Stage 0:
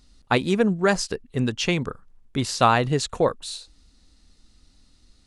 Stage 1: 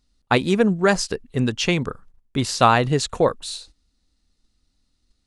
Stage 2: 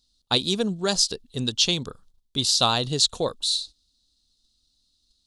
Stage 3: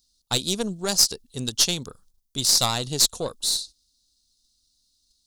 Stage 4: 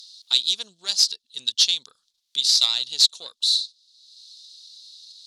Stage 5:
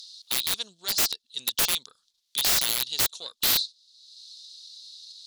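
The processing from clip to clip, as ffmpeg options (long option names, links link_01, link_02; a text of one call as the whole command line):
ffmpeg -i in.wav -af "agate=range=-14dB:threshold=-47dB:ratio=16:detection=peak,volume=2.5dB" out.wav
ffmpeg -i in.wav -af "highshelf=frequency=2800:width_type=q:width=3:gain=10,volume=-7.5dB" out.wav
ffmpeg -i in.wav -af "aeval=exprs='0.668*(cos(1*acos(clip(val(0)/0.668,-1,1)))-cos(1*PI/2))+0.106*(cos(4*acos(clip(val(0)/0.668,-1,1)))-cos(4*PI/2))':channel_layout=same,aexciter=amount=3.1:drive=4.6:freq=5000,volume=-3.5dB" out.wav
ffmpeg -i in.wav -filter_complex "[0:a]asplit=2[link_01][link_02];[link_02]acompressor=mode=upward:threshold=-24dB:ratio=2.5,volume=3dB[link_03];[link_01][link_03]amix=inputs=2:normalize=0,bandpass=frequency=3800:width_type=q:width=3:csg=0" out.wav
ffmpeg -i in.wav -af "aeval=exprs='(mod(6.68*val(0)+1,2)-1)/6.68':channel_layout=same" out.wav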